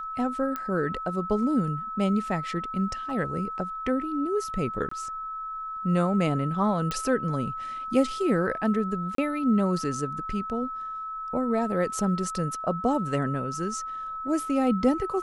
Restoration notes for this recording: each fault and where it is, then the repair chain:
whistle 1,300 Hz −32 dBFS
0:00.56: click −18 dBFS
0:04.89–0:04.91: drop-out 24 ms
0:06.91: click −16 dBFS
0:09.15–0:09.18: drop-out 33 ms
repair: click removal
notch filter 1,300 Hz, Q 30
repair the gap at 0:04.89, 24 ms
repair the gap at 0:09.15, 33 ms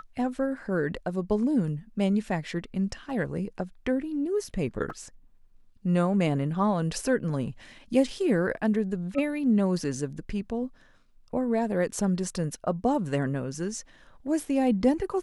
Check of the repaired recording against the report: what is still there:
none of them is left

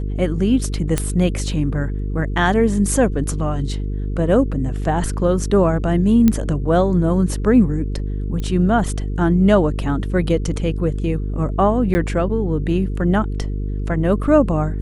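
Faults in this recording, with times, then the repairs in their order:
mains buzz 50 Hz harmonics 9 −23 dBFS
0:00.98: click −5 dBFS
0:06.28: click −4 dBFS
0:08.40: click −15 dBFS
0:11.94–0:11.95: drop-out 10 ms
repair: click removal
hum removal 50 Hz, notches 9
repair the gap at 0:11.94, 10 ms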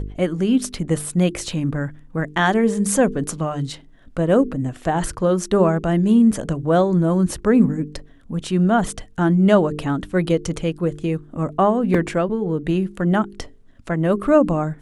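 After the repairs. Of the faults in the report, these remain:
0:00.98: click

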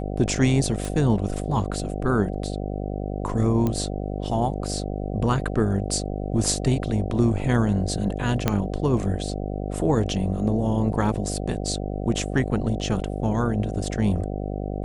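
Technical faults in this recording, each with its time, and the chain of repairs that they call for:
mains buzz 50 Hz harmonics 15 −29 dBFS
0:00.85: click
0:03.67: click −13 dBFS
0:08.48: click −6 dBFS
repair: click removal
hum removal 50 Hz, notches 15

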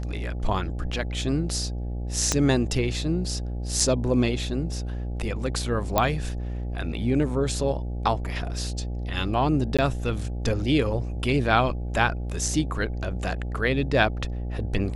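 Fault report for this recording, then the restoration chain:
mains buzz 60 Hz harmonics 14 −30 dBFS
0:02.32: click −7 dBFS
0:03.80: drop-out 3.1 ms
0:05.98: click −6 dBFS
0:09.77–0:09.79: drop-out 16 ms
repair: click removal
hum removal 60 Hz, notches 14
repair the gap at 0:03.80, 3.1 ms
repair the gap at 0:09.77, 16 ms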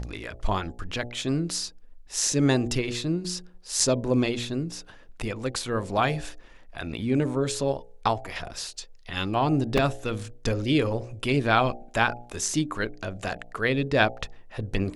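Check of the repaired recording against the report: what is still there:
0:02.32: click

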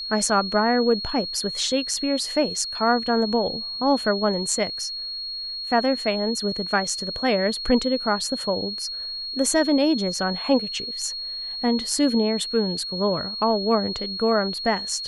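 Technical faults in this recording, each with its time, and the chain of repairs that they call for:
whistle 4,300 Hz −29 dBFS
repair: notch filter 4,300 Hz, Q 30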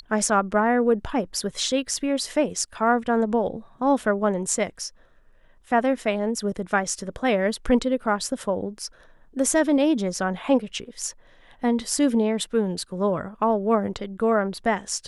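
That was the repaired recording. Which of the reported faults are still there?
none of them is left

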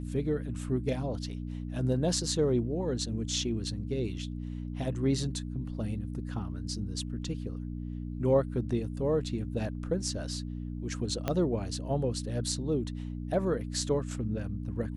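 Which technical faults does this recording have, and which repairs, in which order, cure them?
mains hum 60 Hz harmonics 5 −37 dBFS
0:11.28: click −15 dBFS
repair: click removal
hum removal 60 Hz, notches 5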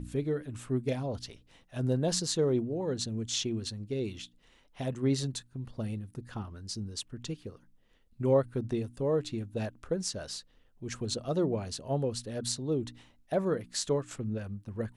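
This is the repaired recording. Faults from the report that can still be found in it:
0:11.28: click

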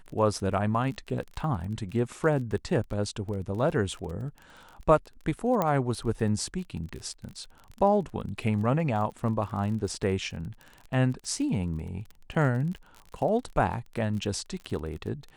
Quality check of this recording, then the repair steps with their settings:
surface crackle 30 per second −36 dBFS
0:05.62: click −13 dBFS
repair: click removal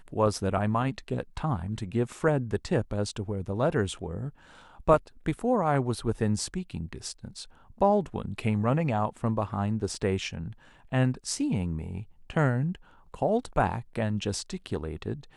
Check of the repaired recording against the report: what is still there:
none of them is left

